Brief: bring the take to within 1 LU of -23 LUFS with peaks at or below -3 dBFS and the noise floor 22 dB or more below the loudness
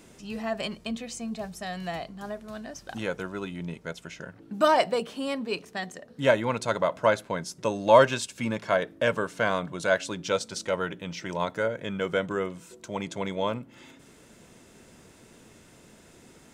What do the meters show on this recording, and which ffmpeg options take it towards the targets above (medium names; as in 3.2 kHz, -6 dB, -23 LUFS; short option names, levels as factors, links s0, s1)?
loudness -28.0 LUFS; peak level -4.5 dBFS; loudness target -23.0 LUFS
-> -af "volume=1.78,alimiter=limit=0.708:level=0:latency=1"